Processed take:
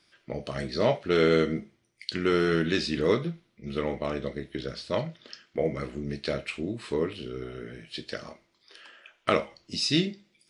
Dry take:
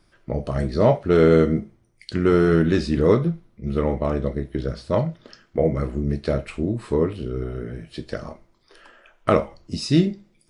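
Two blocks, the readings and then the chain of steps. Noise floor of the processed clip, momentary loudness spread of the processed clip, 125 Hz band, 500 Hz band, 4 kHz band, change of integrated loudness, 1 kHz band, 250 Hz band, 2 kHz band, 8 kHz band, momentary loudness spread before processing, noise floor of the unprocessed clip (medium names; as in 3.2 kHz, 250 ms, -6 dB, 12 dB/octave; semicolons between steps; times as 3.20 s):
-70 dBFS, 15 LU, -11.0 dB, -7.0 dB, +4.0 dB, -7.0 dB, -5.5 dB, -8.0 dB, 0.0 dB, no reading, 15 LU, -62 dBFS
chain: frequency weighting D; trim -6.5 dB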